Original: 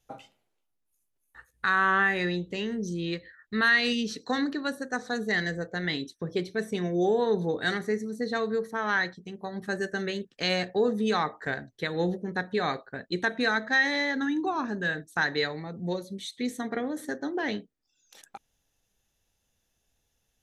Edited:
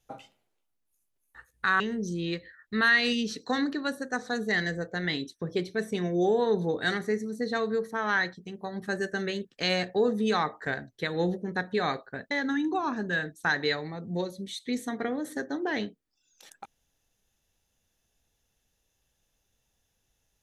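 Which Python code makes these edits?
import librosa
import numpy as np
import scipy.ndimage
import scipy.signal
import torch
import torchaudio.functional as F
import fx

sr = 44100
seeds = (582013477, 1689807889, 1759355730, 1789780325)

y = fx.edit(x, sr, fx.cut(start_s=1.8, length_s=0.8),
    fx.cut(start_s=13.11, length_s=0.92), tone=tone)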